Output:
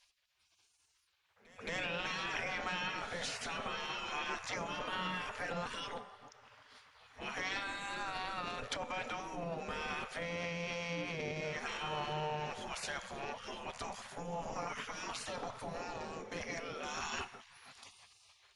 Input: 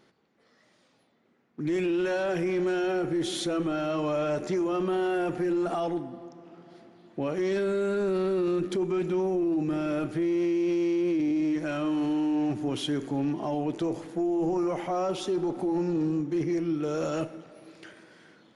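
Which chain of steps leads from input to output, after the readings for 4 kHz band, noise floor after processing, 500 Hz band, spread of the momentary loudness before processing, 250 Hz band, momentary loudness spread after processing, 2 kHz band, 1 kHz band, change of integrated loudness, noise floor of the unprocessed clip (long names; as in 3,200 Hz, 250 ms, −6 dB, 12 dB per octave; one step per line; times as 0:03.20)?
−1.0 dB, −75 dBFS, −16.0 dB, 5 LU, −22.0 dB, 11 LU, +0.5 dB, −4.0 dB, −11.5 dB, −66 dBFS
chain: echo ahead of the sound 222 ms −23 dB
gate on every frequency bin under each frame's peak −20 dB weak
treble cut that deepens with the level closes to 340 Hz, closed at −27.5 dBFS
level +4 dB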